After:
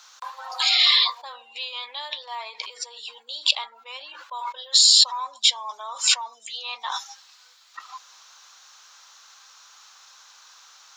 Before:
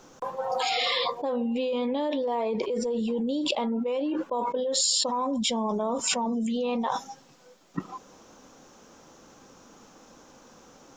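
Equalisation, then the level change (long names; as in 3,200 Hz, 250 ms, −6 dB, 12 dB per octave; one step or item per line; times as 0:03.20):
high-pass filter 1,100 Hz 24 dB per octave
parametric band 4,100 Hz +10 dB 0.54 octaves
+5.0 dB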